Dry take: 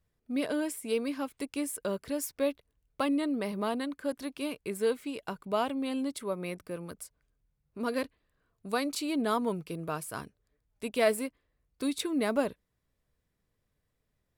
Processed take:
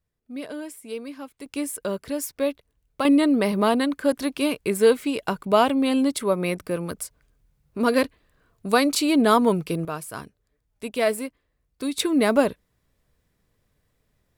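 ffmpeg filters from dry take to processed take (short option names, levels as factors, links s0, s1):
-af "asetnsamples=n=441:p=0,asendcmd='1.46 volume volume 5dB;3.05 volume volume 11.5dB;9.85 volume volume 3.5dB;11.98 volume volume 9.5dB',volume=0.708"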